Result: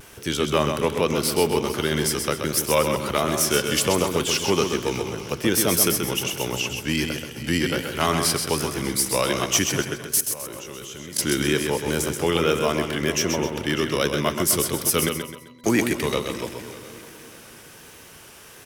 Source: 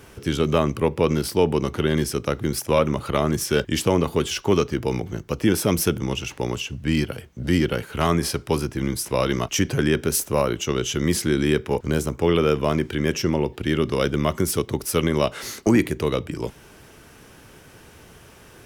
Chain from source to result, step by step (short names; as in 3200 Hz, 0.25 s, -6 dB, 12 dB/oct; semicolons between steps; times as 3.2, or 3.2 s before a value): regenerating reverse delay 0.3 s, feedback 60%, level -14 dB; tilt +2 dB/oct; 9.82–11.19 level quantiser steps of 19 dB; vibrato 1.3 Hz 51 cents; 15.09–15.64 octave resonator B, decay 0.46 s; feedback echo 0.13 s, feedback 37%, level -6 dB